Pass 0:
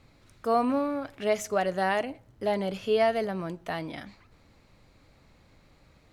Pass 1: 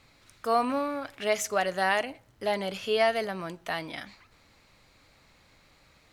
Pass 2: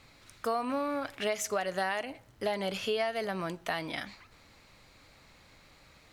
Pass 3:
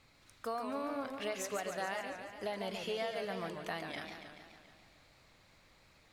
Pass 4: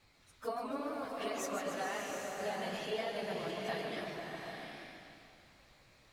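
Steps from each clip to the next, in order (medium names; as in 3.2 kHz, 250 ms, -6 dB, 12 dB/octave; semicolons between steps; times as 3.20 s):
tilt shelf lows -5.5 dB, about 750 Hz
compression 6:1, threshold -30 dBFS, peak gain reduction 11 dB; trim +2 dB
modulated delay 142 ms, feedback 65%, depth 182 cents, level -6.5 dB; trim -7.5 dB
phase randomisation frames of 50 ms; swelling reverb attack 780 ms, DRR 2 dB; trim -1.5 dB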